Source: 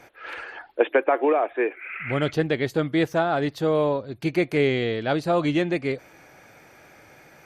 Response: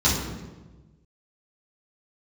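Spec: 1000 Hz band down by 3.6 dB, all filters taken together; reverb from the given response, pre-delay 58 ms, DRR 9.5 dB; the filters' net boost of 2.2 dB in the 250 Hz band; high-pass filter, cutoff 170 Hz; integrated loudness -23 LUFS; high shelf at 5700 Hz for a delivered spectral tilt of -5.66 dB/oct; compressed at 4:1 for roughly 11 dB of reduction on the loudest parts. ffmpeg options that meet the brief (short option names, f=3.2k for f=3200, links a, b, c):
-filter_complex "[0:a]highpass=170,equalizer=f=250:t=o:g=4.5,equalizer=f=1k:t=o:g=-6,highshelf=f=5.7k:g=-4.5,acompressor=threshold=-28dB:ratio=4,asplit=2[a][b];[1:a]atrim=start_sample=2205,adelay=58[c];[b][c]afir=irnorm=-1:irlink=0,volume=-25.5dB[d];[a][d]amix=inputs=2:normalize=0,volume=8dB"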